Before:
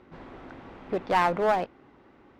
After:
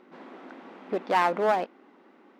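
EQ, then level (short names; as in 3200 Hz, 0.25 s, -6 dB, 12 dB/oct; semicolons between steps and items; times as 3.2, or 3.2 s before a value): brick-wall FIR high-pass 180 Hz; 0.0 dB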